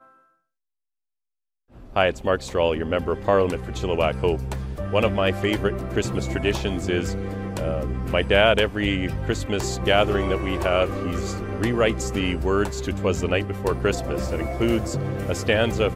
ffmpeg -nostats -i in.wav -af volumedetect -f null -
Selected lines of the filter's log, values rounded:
mean_volume: -23.5 dB
max_volume: -4.8 dB